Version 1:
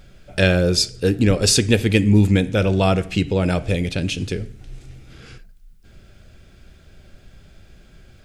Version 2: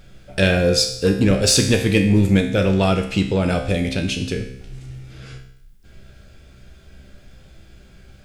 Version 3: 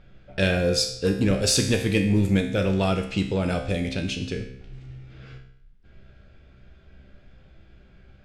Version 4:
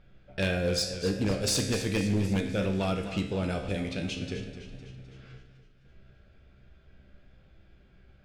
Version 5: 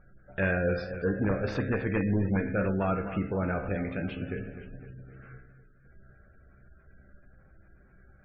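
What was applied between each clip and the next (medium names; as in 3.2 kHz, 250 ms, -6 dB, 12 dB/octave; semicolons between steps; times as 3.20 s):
in parallel at -6 dB: hard clipper -14 dBFS, distortion -11 dB; on the sum: feedback comb 65 Hz, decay 0.72 s, harmonics all, mix 80%; trim +7 dB
level-controlled noise filter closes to 2.7 kHz, open at -14.5 dBFS; trim -5.5 dB
wavefolder -14.5 dBFS; modulated delay 255 ms, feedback 54%, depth 82 cents, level -11.5 dB; trim -6 dB
resonant low-pass 1.6 kHz, resonance Q 2; spectral gate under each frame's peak -30 dB strong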